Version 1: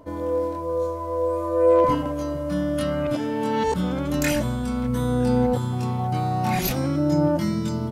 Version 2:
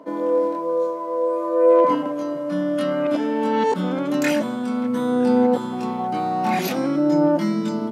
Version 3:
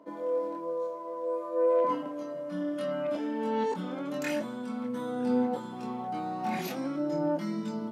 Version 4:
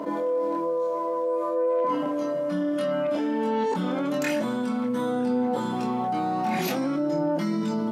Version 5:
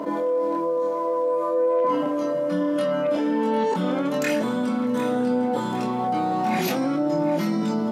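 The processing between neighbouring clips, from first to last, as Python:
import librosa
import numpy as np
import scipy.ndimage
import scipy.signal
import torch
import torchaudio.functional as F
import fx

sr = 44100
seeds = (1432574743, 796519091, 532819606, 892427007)

y1 = scipy.signal.sosfilt(scipy.signal.butter(6, 190.0, 'highpass', fs=sr, output='sos'), x)
y1 = fx.high_shelf(y1, sr, hz=5300.0, db=-11.5)
y1 = fx.rider(y1, sr, range_db=10, speed_s=2.0)
y1 = F.gain(torch.from_numpy(y1), 2.5).numpy()
y2 = fx.chorus_voices(y1, sr, voices=2, hz=0.84, base_ms=24, depth_ms=1.8, mix_pct=30)
y2 = F.gain(torch.from_numpy(y2), -8.5).numpy()
y3 = fx.env_flatten(y2, sr, amount_pct=70)
y4 = fx.echo_feedback(y3, sr, ms=754, feedback_pct=52, wet_db=-13.5)
y4 = F.gain(torch.from_numpy(y4), 2.5).numpy()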